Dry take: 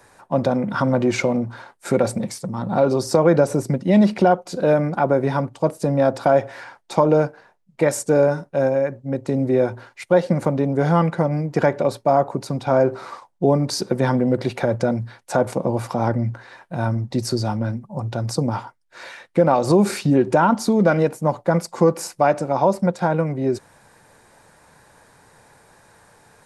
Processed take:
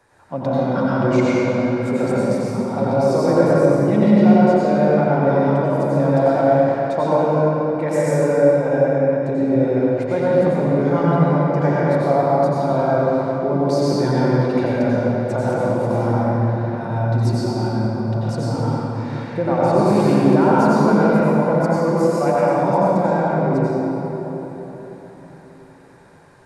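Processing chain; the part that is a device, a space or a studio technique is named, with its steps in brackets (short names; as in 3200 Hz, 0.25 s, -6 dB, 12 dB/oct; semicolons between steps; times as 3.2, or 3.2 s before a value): swimming-pool hall (reverb RT60 4.1 s, pre-delay 83 ms, DRR -8.5 dB; high shelf 5400 Hz -7.5 dB); gain -7 dB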